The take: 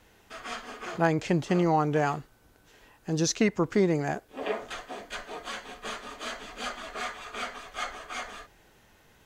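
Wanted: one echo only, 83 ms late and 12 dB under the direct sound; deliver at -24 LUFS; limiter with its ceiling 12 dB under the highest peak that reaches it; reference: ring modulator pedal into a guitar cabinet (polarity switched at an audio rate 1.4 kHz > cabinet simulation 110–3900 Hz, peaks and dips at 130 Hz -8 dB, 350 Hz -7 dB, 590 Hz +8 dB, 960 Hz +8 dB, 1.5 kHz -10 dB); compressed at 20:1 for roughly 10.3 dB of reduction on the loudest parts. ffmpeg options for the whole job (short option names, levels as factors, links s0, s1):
-af "acompressor=threshold=0.0355:ratio=20,alimiter=level_in=2.51:limit=0.0631:level=0:latency=1,volume=0.398,aecho=1:1:83:0.251,aeval=exprs='val(0)*sgn(sin(2*PI*1400*n/s))':c=same,highpass=110,equalizer=f=130:t=q:w=4:g=-8,equalizer=f=350:t=q:w=4:g=-7,equalizer=f=590:t=q:w=4:g=8,equalizer=f=960:t=q:w=4:g=8,equalizer=f=1500:t=q:w=4:g=-10,lowpass=f=3900:w=0.5412,lowpass=f=3900:w=1.3066,volume=7.08"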